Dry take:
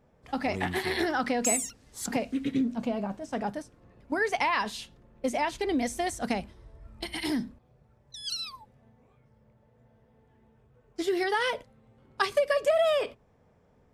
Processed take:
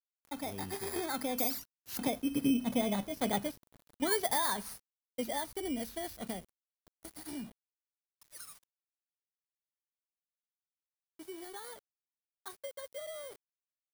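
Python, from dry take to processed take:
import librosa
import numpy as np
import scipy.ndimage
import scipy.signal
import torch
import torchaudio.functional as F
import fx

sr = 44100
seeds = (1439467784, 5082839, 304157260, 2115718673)

y = fx.bit_reversed(x, sr, seeds[0], block=16)
y = fx.doppler_pass(y, sr, speed_mps=16, closest_m=16.0, pass_at_s=3.16)
y = np.where(np.abs(y) >= 10.0 ** (-51.0 / 20.0), y, 0.0)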